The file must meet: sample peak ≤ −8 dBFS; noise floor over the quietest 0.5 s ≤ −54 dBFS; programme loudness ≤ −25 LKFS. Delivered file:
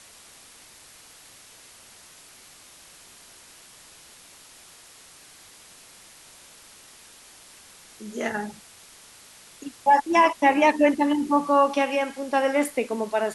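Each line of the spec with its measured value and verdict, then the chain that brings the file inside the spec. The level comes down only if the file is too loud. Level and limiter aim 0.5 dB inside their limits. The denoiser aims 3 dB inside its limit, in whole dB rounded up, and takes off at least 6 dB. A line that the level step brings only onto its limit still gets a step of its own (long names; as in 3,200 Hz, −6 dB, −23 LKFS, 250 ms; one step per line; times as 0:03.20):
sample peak −6.0 dBFS: out of spec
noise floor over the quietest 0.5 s −50 dBFS: out of spec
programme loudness −22.0 LKFS: out of spec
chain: broadband denoise 6 dB, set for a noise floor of −50 dBFS
level −3.5 dB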